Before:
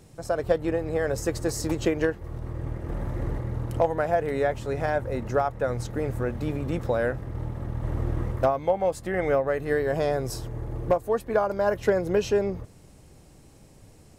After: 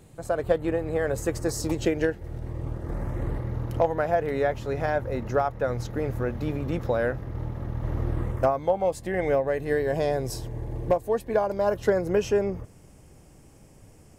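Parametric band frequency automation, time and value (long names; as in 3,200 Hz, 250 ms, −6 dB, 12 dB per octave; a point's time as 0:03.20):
parametric band −11.5 dB 0.26 octaves
0:01.26 5,400 Hz
0:01.83 1,100 Hz
0:02.42 1,100 Hz
0:03.49 8,400 Hz
0:08.03 8,400 Hz
0:08.97 1,300 Hz
0:11.51 1,300 Hz
0:12.15 4,000 Hz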